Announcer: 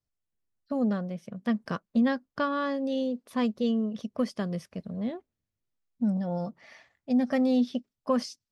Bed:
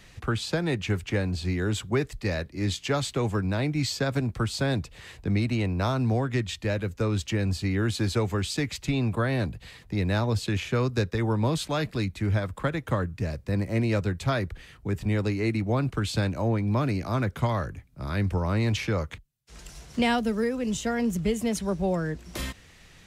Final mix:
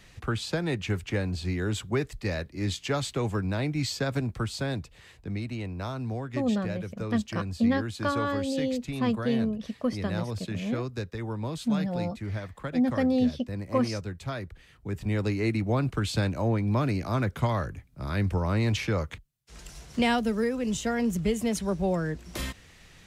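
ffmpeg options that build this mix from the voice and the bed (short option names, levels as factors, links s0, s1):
-filter_complex "[0:a]adelay=5650,volume=1[s0];[1:a]volume=1.88,afade=t=out:st=4.19:d=0.96:silence=0.501187,afade=t=in:st=14.65:d=0.68:silence=0.421697[s1];[s0][s1]amix=inputs=2:normalize=0"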